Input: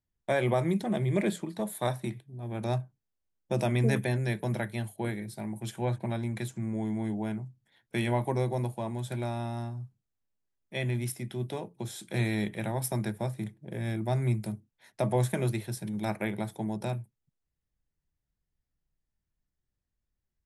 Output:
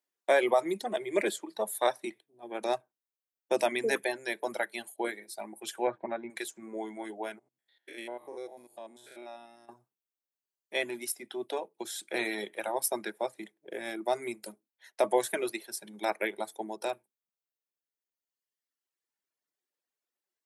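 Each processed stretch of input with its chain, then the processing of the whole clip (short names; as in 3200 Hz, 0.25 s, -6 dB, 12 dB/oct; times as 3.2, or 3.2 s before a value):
5.87–6.3 LPF 1900 Hz + low shelf 130 Hz +9 dB
7.39–9.69 stepped spectrum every 0.1 s + bell 960 Hz -5.5 dB 0.71 oct + compressor 1.5:1, threshold -53 dBFS
whole clip: HPF 350 Hz 24 dB/oct; reverb removal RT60 1.9 s; gain +4.5 dB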